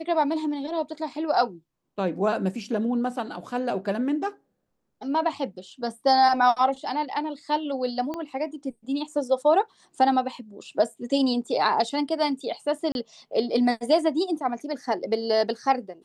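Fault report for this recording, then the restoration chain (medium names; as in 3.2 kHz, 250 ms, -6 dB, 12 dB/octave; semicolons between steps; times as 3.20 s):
8.14 s: pop -19 dBFS
12.92–12.95 s: dropout 31 ms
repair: de-click; interpolate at 12.92 s, 31 ms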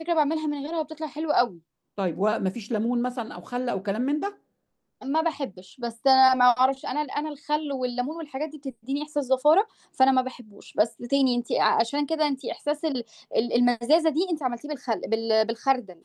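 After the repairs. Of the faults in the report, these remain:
8.14 s: pop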